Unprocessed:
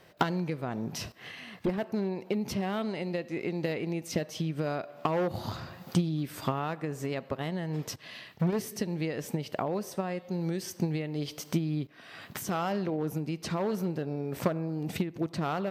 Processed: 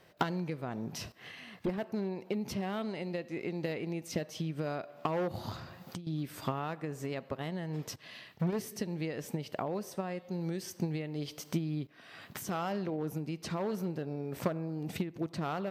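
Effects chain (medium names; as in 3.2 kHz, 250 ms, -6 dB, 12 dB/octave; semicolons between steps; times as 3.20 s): 5.56–6.07 s: compression 10:1, threshold -36 dBFS, peak gain reduction 15.5 dB; trim -4 dB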